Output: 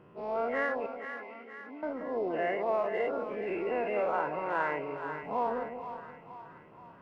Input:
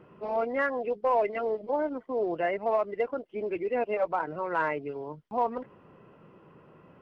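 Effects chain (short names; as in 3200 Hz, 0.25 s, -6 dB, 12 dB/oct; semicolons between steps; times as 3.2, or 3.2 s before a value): spectral dilation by 0.12 s; 0.86–1.83 vowel filter i; split-band echo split 810 Hz, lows 0.183 s, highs 0.475 s, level -8 dB; gain -7 dB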